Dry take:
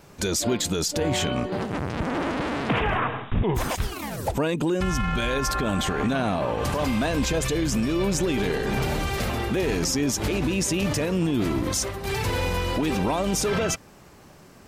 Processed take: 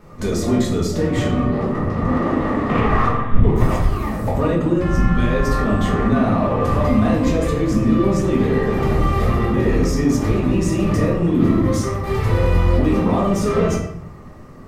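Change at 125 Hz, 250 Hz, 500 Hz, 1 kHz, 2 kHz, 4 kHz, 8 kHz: +9.5 dB, +8.5 dB, +6.0 dB, +5.5 dB, +1.0 dB, -5.0 dB, -6.5 dB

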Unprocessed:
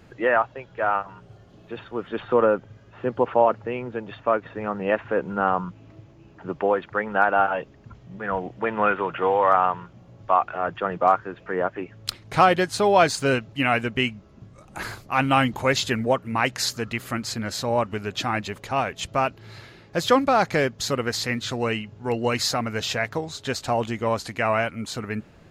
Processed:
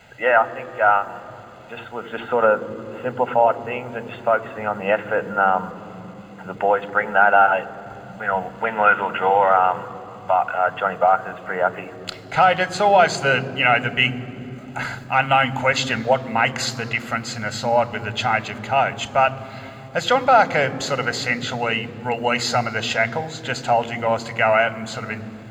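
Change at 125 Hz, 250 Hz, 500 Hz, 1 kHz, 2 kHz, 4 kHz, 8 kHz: +1.0 dB, -2.0 dB, +2.5 dB, +5.0 dB, +6.5 dB, +3.0 dB, 0.0 dB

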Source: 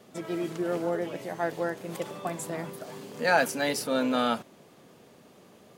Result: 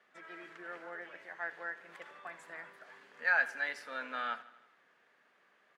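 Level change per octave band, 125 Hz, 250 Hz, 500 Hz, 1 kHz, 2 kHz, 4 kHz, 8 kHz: under -25 dB, -25.0 dB, -19.0 dB, -10.5 dB, -1.0 dB, -14.5 dB, under -20 dB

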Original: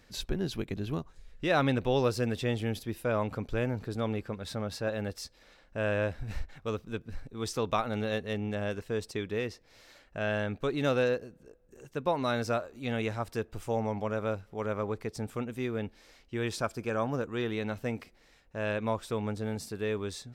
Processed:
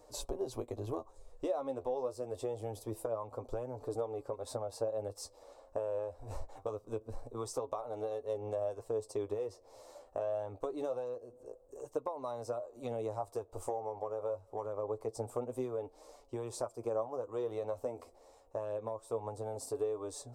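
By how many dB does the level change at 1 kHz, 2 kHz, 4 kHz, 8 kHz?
-7.0 dB, -24.0 dB, -14.0 dB, -2.5 dB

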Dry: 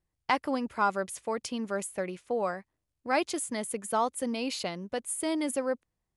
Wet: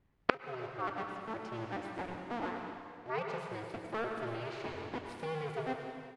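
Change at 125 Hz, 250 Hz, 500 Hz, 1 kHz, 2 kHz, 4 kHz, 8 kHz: +2.0 dB, -9.5 dB, -7.0 dB, -7.5 dB, -5.0 dB, -10.0 dB, under -25 dB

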